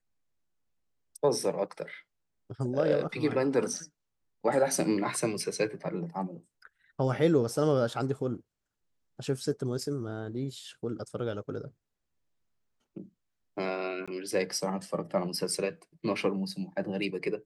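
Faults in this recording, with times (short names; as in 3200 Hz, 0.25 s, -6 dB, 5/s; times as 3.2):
14.06–14.08 gap 16 ms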